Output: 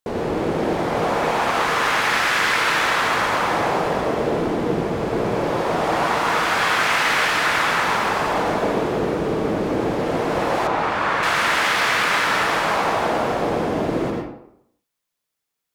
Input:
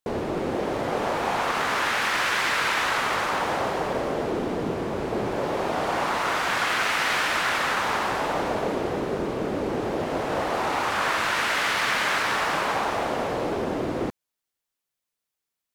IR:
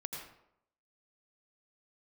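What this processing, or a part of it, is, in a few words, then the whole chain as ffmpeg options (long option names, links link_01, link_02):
bathroom: -filter_complex "[1:a]atrim=start_sample=2205[link_01];[0:a][link_01]afir=irnorm=-1:irlink=0,asettb=1/sr,asplit=3[link_02][link_03][link_04];[link_02]atrim=end=10.674[link_05];[link_03]atrim=start=10.67:end=11.23,asetpts=PTS-STARTPTS,afade=type=in:duration=0.004:curve=qsin,afade=type=out:start_time=0.556:duration=0.004:curve=qsin,aemphasis=mode=reproduction:type=75kf[link_06];[link_04]atrim=start=11.226[link_07];[link_05][link_06]acrossfade=duration=0.004:curve1=hsin:curve2=qsin[link_08];[link_08][link_07]acrossfade=duration=0.004:curve1=qsin:curve2=hsin,volume=5.5dB"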